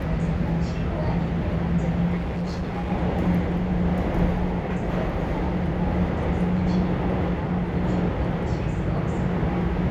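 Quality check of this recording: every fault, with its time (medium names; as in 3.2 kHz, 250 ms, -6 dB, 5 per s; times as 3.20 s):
2.16–2.92 s: clipped -24 dBFS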